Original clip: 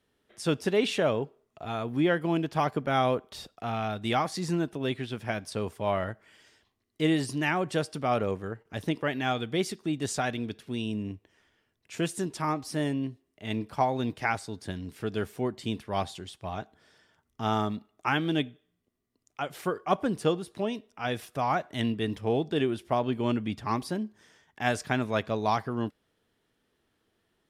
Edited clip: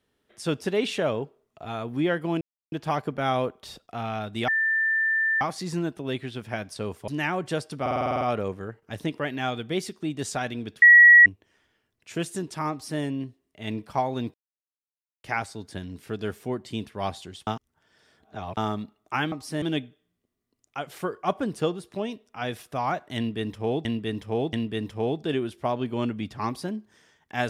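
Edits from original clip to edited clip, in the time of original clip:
2.41 s: insert silence 0.31 s
4.17 s: add tone 1.78 kHz -20.5 dBFS 0.93 s
5.84–7.31 s: delete
8.04 s: stutter 0.05 s, 9 plays
10.65–11.09 s: bleep 1.92 kHz -8.5 dBFS
12.54–12.84 s: copy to 18.25 s
14.17 s: insert silence 0.90 s
16.40–17.50 s: reverse
21.80–22.48 s: loop, 3 plays

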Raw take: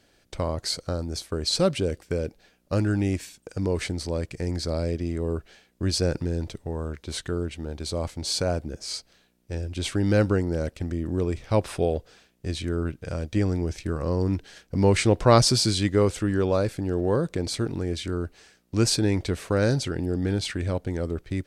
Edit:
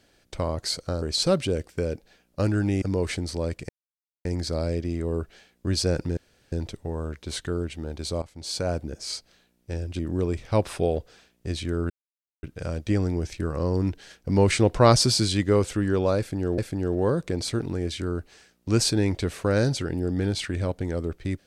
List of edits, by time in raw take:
1.02–1.35 s: delete
3.15–3.54 s: delete
4.41 s: insert silence 0.56 s
6.33 s: insert room tone 0.35 s
8.03–8.59 s: fade in, from -16.5 dB
9.80–10.98 s: delete
12.89 s: insert silence 0.53 s
16.64–17.04 s: loop, 2 plays

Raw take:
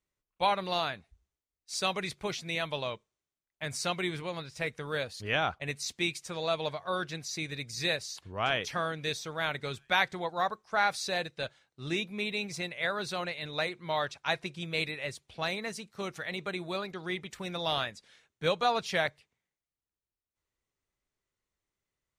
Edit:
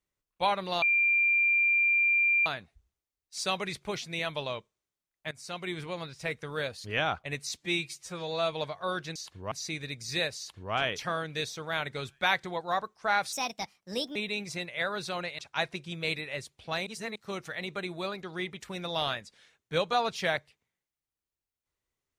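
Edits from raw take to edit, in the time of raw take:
0.82 s: add tone 2.38 kHz -21.5 dBFS 1.64 s
3.67–4.24 s: fade in, from -18.5 dB
5.94–6.57 s: stretch 1.5×
8.06–8.42 s: copy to 7.20 s
11.01–12.19 s: speed 142%
13.42–14.09 s: delete
15.57–15.86 s: reverse

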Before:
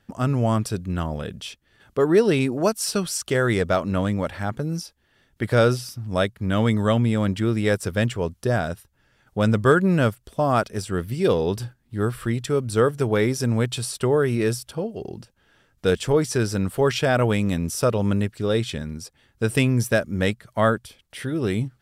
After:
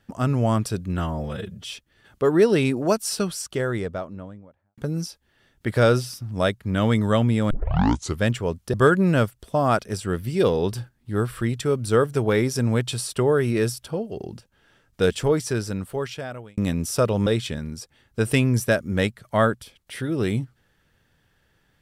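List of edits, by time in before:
0.98–1.47 s: stretch 1.5×
2.64–4.53 s: studio fade out
7.26 s: tape start 0.71 s
8.49–9.58 s: delete
15.98–17.42 s: fade out
18.11–18.50 s: delete

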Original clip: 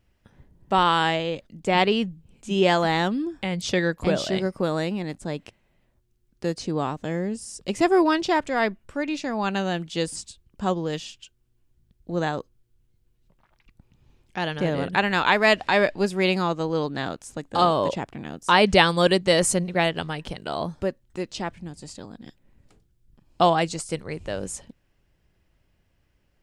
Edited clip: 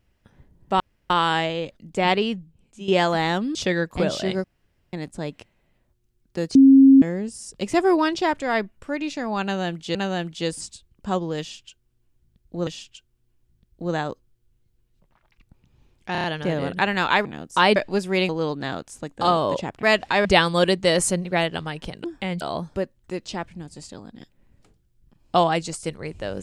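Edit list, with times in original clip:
0.80 s: insert room tone 0.30 s
1.80–2.58 s: fade out, to -11.5 dB
3.25–3.62 s: move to 20.47 s
4.51–5.00 s: room tone
6.62–7.09 s: bleep 270 Hz -7.5 dBFS
9.50–10.02 s: loop, 2 plays
10.95–12.22 s: loop, 2 plays
14.40 s: stutter 0.03 s, 5 plays
15.41–15.83 s: swap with 18.17–18.68 s
16.36–16.63 s: delete

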